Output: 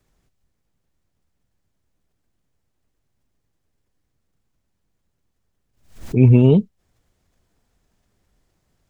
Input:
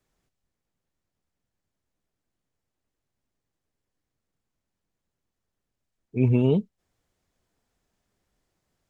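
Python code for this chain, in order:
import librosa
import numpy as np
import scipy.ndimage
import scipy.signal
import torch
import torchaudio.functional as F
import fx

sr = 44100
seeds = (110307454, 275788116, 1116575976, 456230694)

y = fx.low_shelf(x, sr, hz=160.0, db=7.5)
y = fx.pre_swell(y, sr, db_per_s=120.0)
y = y * librosa.db_to_amplitude(5.5)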